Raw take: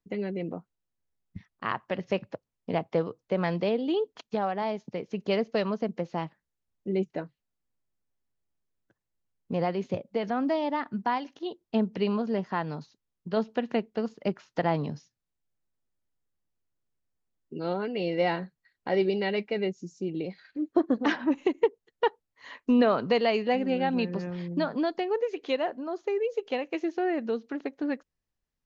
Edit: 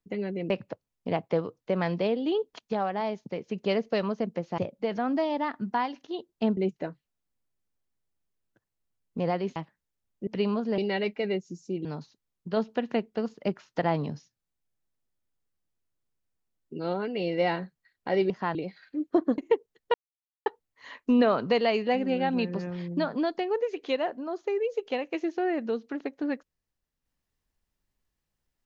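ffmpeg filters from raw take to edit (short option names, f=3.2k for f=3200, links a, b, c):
-filter_complex "[0:a]asplit=12[a][b][c][d][e][f][g][h][i][j][k][l];[a]atrim=end=0.502[m];[b]atrim=start=2.118:end=6.202[n];[c]atrim=start=9.898:end=11.892[o];[d]atrim=start=6.908:end=9.902[p];[e]atrim=start=6.198:end=6.912[q];[f]atrim=start=11.888:end=12.402[r];[g]atrim=start=19.098:end=20.172[s];[h]atrim=start=12.648:end=19.102[t];[i]atrim=start=12.398:end=12.652[u];[j]atrim=start=20.168:end=21.002[v];[k]atrim=start=21.498:end=22.06,asetpts=PTS-STARTPTS,afade=t=out:st=0.558:d=0.004:c=hsin,apad=pad_dur=0.52[w];[l]atrim=start=22.06,asetpts=PTS-STARTPTS,afade=t=in:d=0.004:c=hsin[x];[m][n]acrossfade=d=0.004:c1=hsin:c2=hsin[y];[y][o]acrossfade=d=0.004:c1=hsin:c2=hsin[z];[z][p]acrossfade=d=0.004:c1=hsin:c2=hsin[aa];[aa][q]acrossfade=d=0.004:c1=hsin:c2=hsin[ab];[ab][r]acrossfade=d=0.004:c1=hsin:c2=hsin[ac];[ac][s]acrossfade=d=0.004:c1=hsin:c2=hsin[ad];[ad][t]acrossfade=d=0.004:c1=hsin:c2=hsin[ae];[ae][u]acrossfade=d=0.004:c1=hsin:c2=hsin[af];[af][v]acrossfade=d=0.004:c1=hsin:c2=hsin[ag];[w][x]concat=n=2:v=0:a=1[ah];[ag][ah]acrossfade=d=0.004:c1=hsin:c2=hsin"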